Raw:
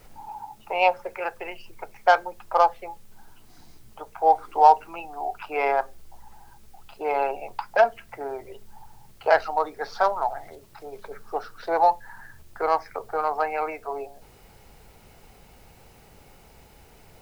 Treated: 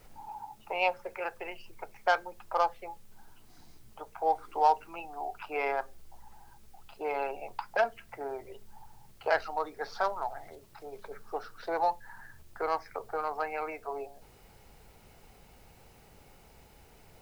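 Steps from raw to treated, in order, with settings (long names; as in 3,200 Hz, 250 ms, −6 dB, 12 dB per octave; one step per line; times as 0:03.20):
dynamic equaliser 740 Hz, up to −5 dB, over −29 dBFS, Q 1.1
level −5 dB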